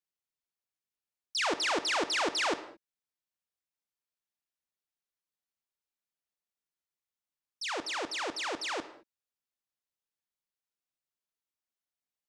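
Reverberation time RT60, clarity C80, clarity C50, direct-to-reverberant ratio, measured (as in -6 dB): not exponential, 15.5 dB, 14.0 dB, 11.5 dB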